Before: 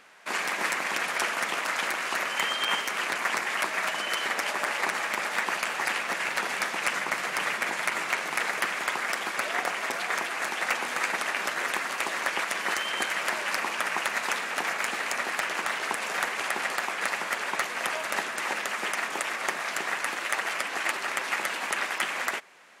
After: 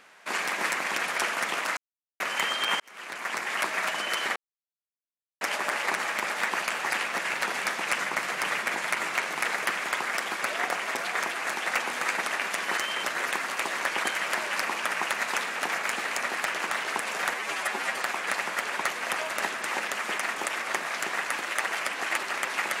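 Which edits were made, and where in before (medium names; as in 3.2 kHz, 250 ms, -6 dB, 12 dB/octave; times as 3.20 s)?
1.77–2.20 s: mute
2.80–3.61 s: fade in
4.36 s: insert silence 1.05 s
12.46–13.00 s: move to 11.44 s
16.29–16.71 s: stretch 1.5×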